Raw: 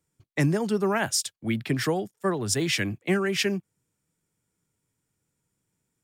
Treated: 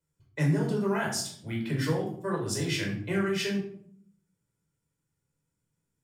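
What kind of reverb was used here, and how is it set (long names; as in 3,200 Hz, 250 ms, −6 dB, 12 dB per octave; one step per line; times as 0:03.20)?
rectangular room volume 900 cubic metres, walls furnished, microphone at 4.9 metres
level −11 dB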